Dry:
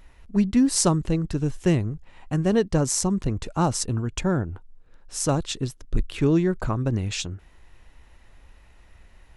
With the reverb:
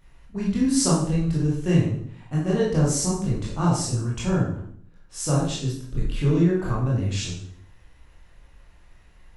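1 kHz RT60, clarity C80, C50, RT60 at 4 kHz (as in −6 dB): 0.55 s, 7.0 dB, 2.0 dB, 0.55 s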